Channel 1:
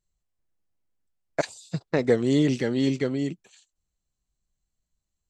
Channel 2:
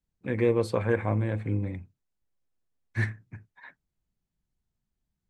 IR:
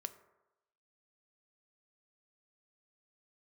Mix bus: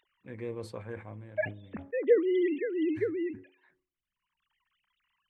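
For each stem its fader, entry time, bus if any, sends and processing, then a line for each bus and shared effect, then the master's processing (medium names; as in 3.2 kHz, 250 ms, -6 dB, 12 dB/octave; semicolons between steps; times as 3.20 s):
-6.0 dB, 0.00 s, send -15 dB, formants replaced by sine waves; de-hum 276.6 Hz, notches 3; upward compressor, threshold -48 dBFS
-14.5 dB, 0.00 s, no send, auto duck -6 dB, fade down 0.55 s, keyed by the first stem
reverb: on, RT60 1.0 s, pre-delay 3 ms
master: decay stretcher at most 140 dB/s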